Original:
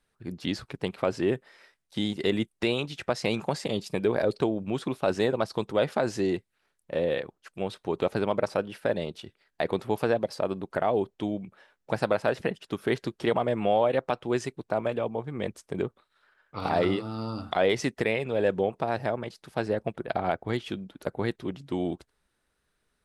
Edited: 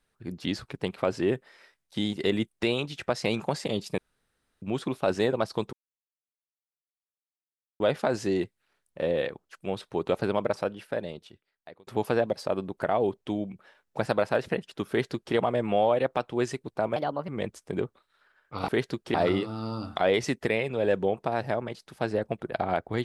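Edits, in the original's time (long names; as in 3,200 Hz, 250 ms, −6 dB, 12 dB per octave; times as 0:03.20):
0:03.98–0:04.62: fill with room tone
0:05.73: splice in silence 2.07 s
0:08.30–0:09.80: fade out
0:12.82–0:13.28: duplicate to 0:16.70
0:14.89–0:15.30: play speed 127%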